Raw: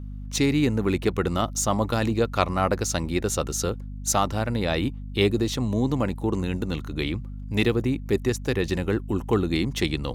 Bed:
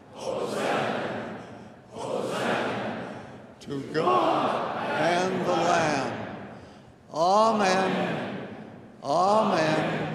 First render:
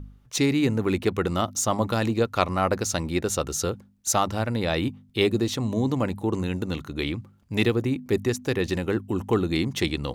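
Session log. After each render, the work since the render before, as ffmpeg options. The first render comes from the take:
-af "bandreject=f=50:t=h:w=4,bandreject=f=100:t=h:w=4,bandreject=f=150:t=h:w=4,bandreject=f=200:t=h:w=4,bandreject=f=250:t=h:w=4"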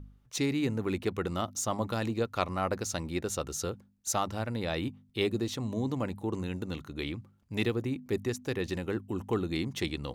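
-af "volume=-7.5dB"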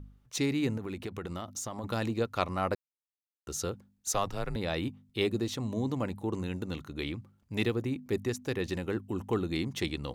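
-filter_complex "[0:a]asettb=1/sr,asplit=3[a][b][c];[a]atrim=end=0.774[d];[b]atrim=start=0.77:end=1.84,asetpts=PTS-STARTPTS,afade=t=in:d=0.004:c=qsin,afade=t=out:st=1.066:d=0.004:c=qsin,acompressor=threshold=-33dB:ratio=10:attack=3.2:release=140:knee=1:detection=peak[e];[c]atrim=start=1.836[f];[d][e]acrossfade=d=0.004:c1=hsin:c2=qsin[g];[g][f]acrossfade=d=0.004:c1=qsin:c2=hsin,asettb=1/sr,asplit=3[h][i][j];[h]atrim=end=4.104[k];[i]atrim=start=4.1:end=4.56,asetpts=PTS-STARTPTS,afade=t=in:d=0.004:c=qsin,afade=t=out:st=0.456:d=0.004:c=qsin,afreqshift=-89[l];[j]atrim=start=4.556[m];[k][l]acrossfade=d=0.004:c1=hsin:c2=qsin[n];[n][m]acrossfade=d=0.004:c1=qsin:c2=hsin,asplit=3[o][p][q];[o]atrim=end=2.75,asetpts=PTS-STARTPTS,afade=t=out:st=2.746:d=0.004:c=hsin[r];[p]atrim=start=2.75:end=3.47,asetpts=PTS-STARTPTS,volume=0[s];[q]atrim=start=3.47,asetpts=PTS-STARTPTS,afade=t=in:d=0.004:c=hsin[t];[r][s][t]concat=n=3:v=0:a=1"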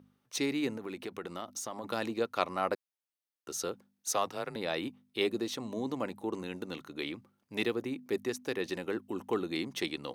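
-af "highpass=270,bandreject=f=7.2k:w=9.3"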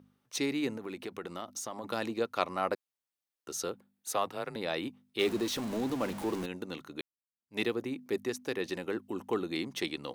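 -filter_complex "[0:a]asettb=1/sr,asplit=3[a][b][c];[a]atrim=end=3.724[d];[b]atrim=start=3.72:end=4.42,asetpts=PTS-STARTPTS,afade=t=in:d=0.004:c=qsin,afade=t=out:st=0.696:d=0.004:c=qsin,equalizer=f=5.8k:t=o:w=0.61:g=-8.5[e];[c]atrim=start=4.416[f];[d][e]acrossfade=d=0.004:c1=hsin:c2=qsin[g];[g][f]acrossfade=d=0.004:c1=qsin:c2=hsin,asettb=1/sr,asplit=3[h][i][j];[h]atrim=end=5.194[k];[i]atrim=start=5.19:end=6.46,asetpts=PTS-STARTPTS,afade=t=in:d=0.004:c=qsin,afade=t=out:st=1.266:d=0.004:c=qsin,aeval=exprs='val(0)+0.5*0.0158*sgn(val(0))':c=same[l];[j]atrim=start=6.456[m];[k][l]acrossfade=d=0.004:c1=hsin:c2=qsin[n];[n][m]acrossfade=d=0.004:c1=qsin:c2=hsin,asplit=2[o][p];[o]atrim=end=7.01,asetpts=PTS-STARTPTS,afade=t=out:st=7.006:d=0.004:c=hsin[q];[p]atrim=start=7.01,asetpts=PTS-STARTPTS,afade=t=in:d=0.57:c=exp[r];[q][r]concat=n=2:v=0:a=1"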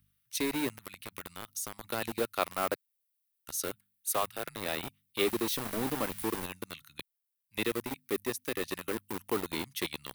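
-filter_complex "[0:a]acrossover=split=130|1600[a][b][c];[b]aeval=exprs='val(0)*gte(abs(val(0)),0.0237)':c=same[d];[a][d][c]amix=inputs=3:normalize=0,aexciter=amount=4.6:drive=1.4:freq=9.1k"

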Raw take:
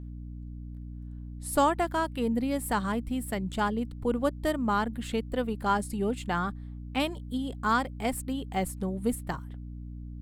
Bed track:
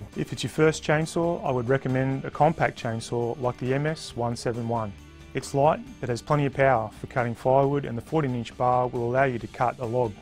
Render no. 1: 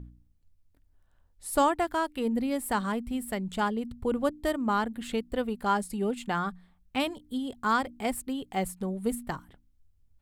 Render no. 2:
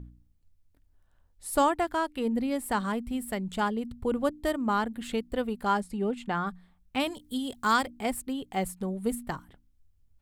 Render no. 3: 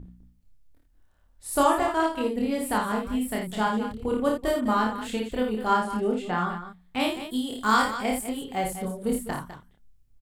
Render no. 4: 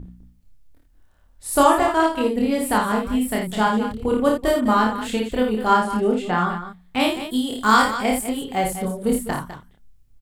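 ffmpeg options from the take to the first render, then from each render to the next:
-af "bandreject=f=60:t=h:w=4,bandreject=f=120:t=h:w=4,bandreject=f=180:t=h:w=4,bandreject=f=240:t=h:w=4,bandreject=f=300:t=h:w=4"
-filter_complex "[0:a]asettb=1/sr,asplit=3[a][b][c];[a]atrim=end=1.804[d];[b]atrim=start=1.8:end=2.8,asetpts=PTS-STARTPTS,afade=t=in:d=0.004:c=qsin,afade=t=out:st=0.996:d=0.004:c=qsin,highshelf=f=11k:g=-5[e];[c]atrim=start=2.796[f];[d][e]acrossfade=d=0.004:c1=hsin:c2=qsin[g];[g][f]acrossfade=d=0.004:c1=qsin:c2=hsin,asettb=1/sr,asplit=3[h][i][j];[h]atrim=end=5.804[k];[i]atrim=start=5.8:end=6.47,asetpts=PTS-STARTPTS,afade=t=in:d=0.004:c=qsin,afade=t=out:st=0.666:d=0.004:c=qsin,lowpass=f=3.1k:p=1[l];[j]atrim=start=6.466[m];[k][l]acrossfade=d=0.004:c1=hsin:c2=qsin[n];[n][m]acrossfade=d=0.004:c1=qsin:c2=hsin,asplit=3[o][p][q];[o]afade=t=out:st=7.06:d=0.02[r];[p]highshelf=f=2.7k:g=9.5,afade=t=in:st=7.06:d=0.02,afade=t=out:st=7.85:d=0.02[s];[q]afade=t=in:st=7.85:d=0.02[t];[r][s][t]amix=inputs=3:normalize=0"
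-filter_complex "[0:a]asplit=2[a][b];[b]adelay=28,volume=-2dB[c];[a][c]amix=inputs=2:normalize=0,asplit=2[d][e];[e]aecho=0:1:55.39|204.1:0.562|0.282[f];[d][f]amix=inputs=2:normalize=0"
-af "volume=6dB"

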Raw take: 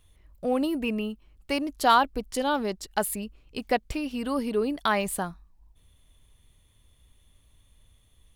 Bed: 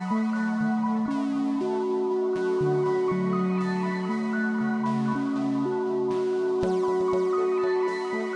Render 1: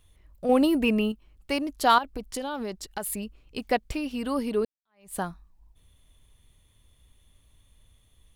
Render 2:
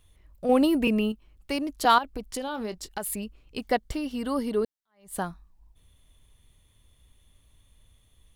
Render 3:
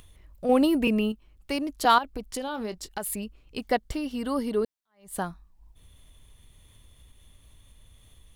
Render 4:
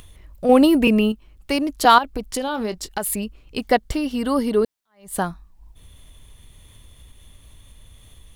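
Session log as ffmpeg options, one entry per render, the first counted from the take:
-filter_complex "[0:a]asettb=1/sr,asplit=3[a][b][c];[a]atrim=end=0.494[d];[b]atrim=start=0.49:end=1.12,asetpts=PTS-STARTPTS,afade=t=in:d=0.004:c=qsin,afade=t=out:st=0.626:d=0.004:c=qsin,acontrast=31[e];[c]atrim=start=1.116[f];[d][e]acrossfade=d=0.004:c1=hsin:c2=qsin[g];[g][f]acrossfade=d=0.004:c1=qsin:c2=hsin,asettb=1/sr,asplit=3[h][i][j];[h]atrim=end=1.984[k];[i]atrim=start=1.98:end=3.06,asetpts=PTS-STARTPTS,afade=t=in:d=0.004:c=qsin,afade=t=out:st=1.076:d=0.004:c=qsin,acompressor=threshold=-28dB:ratio=6:attack=3.2:release=140:knee=1:detection=peak[l];[j]atrim=start=3.056[m];[k][l]acrossfade=d=0.004:c1=hsin:c2=qsin[n];[n][m]acrossfade=d=0.004:c1=qsin:c2=hsin,asplit=2[o][p];[o]atrim=end=4.65,asetpts=PTS-STARTPTS,afade=t=out:st=4.646:d=0.004:c=hsin[q];[p]atrim=start=4.65,asetpts=PTS-STARTPTS,afade=t=in:d=0.52:c=exp[r];[q][r]concat=n=2:v=0:a=1"
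-filter_complex "[0:a]asettb=1/sr,asplit=3[a][b][c];[a]atrim=end=0.874[d];[b]atrim=start=0.87:end=1.85,asetpts=PTS-STARTPTS,afade=t=in:d=0.004:c=qsin,afade=t=out:st=0.976:d=0.004:c=qsin,acrossover=split=470|3000[e][f][g];[f]acompressor=threshold=-32dB:ratio=6:attack=3.2:release=140:knee=2.83:detection=peak[h];[e][h][g]amix=inputs=3:normalize=0[i];[c]atrim=start=1.846[j];[d][i]acrossfade=d=0.004:c1=hsin:c2=qsin[k];[k][j]acrossfade=d=0.004:c1=qsin:c2=hsin,asettb=1/sr,asplit=3[l][m][n];[l]atrim=end=2.454[o];[m]atrim=start=2.45:end=2.89,asetpts=PTS-STARTPTS,afade=t=in:d=0.004:c=qsin,afade=t=out:st=0.436:d=0.004:c=qsin,asplit=2[p][q];[q]adelay=23,volume=-12.5dB[r];[p][r]amix=inputs=2:normalize=0,atrim=end_sample=19404[s];[n]atrim=start=2.886[t];[o][s]acrossfade=d=0.004:c1=hsin:c2=qsin[u];[u][t]acrossfade=d=0.004:c1=qsin:c2=hsin,asettb=1/sr,asplit=3[v][w][x];[v]atrim=end=3.644[y];[w]atrim=start=3.64:end=5.16,asetpts=PTS-STARTPTS,afade=t=in:d=0.004:c=qsin,afade=t=out:st=1.516:d=0.004:c=qsin,bandreject=f=2.5k:w=5.8[z];[x]atrim=start=5.156[aa];[y][z]acrossfade=d=0.004:c1=hsin:c2=qsin[ab];[ab][aa]acrossfade=d=0.004:c1=qsin:c2=hsin"
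-af "acompressor=mode=upward:threshold=-45dB:ratio=2.5"
-af "volume=7.5dB,alimiter=limit=-1dB:level=0:latency=1"

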